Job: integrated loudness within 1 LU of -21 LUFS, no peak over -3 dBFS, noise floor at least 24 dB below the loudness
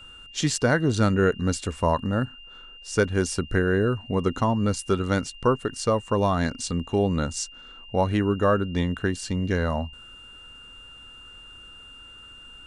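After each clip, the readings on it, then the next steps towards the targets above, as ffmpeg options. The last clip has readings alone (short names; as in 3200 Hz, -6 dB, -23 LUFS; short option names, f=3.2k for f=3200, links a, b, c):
steady tone 2800 Hz; tone level -44 dBFS; loudness -25.0 LUFS; peak -7.5 dBFS; loudness target -21.0 LUFS
-> -af "bandreject=f=2.8k:w=30"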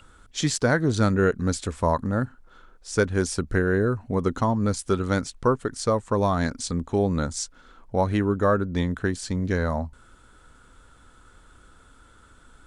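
steady tone none; loudness -25.0 LUFS; peak -7.5 dBFS; loudness target -21.0 LUFS
-> -af "volume=4dB"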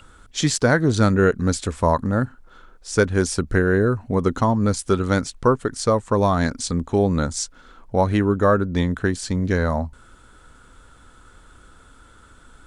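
loudness -21.0 LUFS; peak -3.5 dBFS; noise floor -50 dBFS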